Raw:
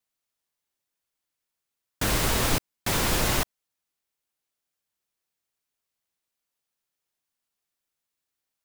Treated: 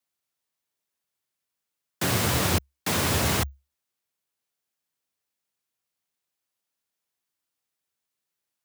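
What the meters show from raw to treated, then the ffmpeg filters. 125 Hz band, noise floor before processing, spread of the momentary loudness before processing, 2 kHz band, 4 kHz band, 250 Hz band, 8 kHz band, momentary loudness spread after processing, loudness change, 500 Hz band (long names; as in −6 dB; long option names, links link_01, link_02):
+3.0 dB, −85 dBFS, 5 LU, 0.0 dB, 0.0 dB, +2.0 dB, 0.0 dB, 6 LU, +0.5 dB, +0.5 dB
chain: -af "afreqshift=68"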